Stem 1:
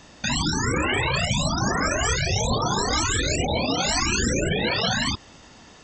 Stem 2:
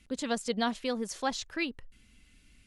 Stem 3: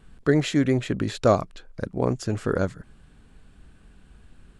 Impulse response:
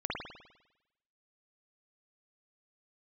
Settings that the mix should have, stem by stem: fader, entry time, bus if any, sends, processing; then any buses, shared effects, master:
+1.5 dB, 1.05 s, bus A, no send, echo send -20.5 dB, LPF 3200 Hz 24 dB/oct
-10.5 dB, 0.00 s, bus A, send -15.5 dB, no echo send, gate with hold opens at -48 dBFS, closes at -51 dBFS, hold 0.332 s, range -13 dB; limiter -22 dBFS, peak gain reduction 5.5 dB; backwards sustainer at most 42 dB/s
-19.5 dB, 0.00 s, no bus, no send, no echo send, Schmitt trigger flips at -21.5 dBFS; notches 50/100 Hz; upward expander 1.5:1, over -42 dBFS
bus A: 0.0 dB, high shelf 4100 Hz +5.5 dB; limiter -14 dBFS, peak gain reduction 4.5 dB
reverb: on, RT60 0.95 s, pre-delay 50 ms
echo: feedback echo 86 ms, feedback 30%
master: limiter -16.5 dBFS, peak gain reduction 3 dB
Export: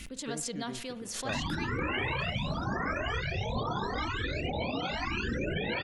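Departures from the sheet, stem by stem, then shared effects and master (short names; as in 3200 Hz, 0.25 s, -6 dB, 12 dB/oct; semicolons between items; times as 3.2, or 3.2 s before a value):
stem 1 +1.5 dB -> -9.0 dB; stem 2: missing limiter -22 dBFS, peak gain reduction 5.5 dB; stem 3: missing Schmitt trigger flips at -21.5 dBFS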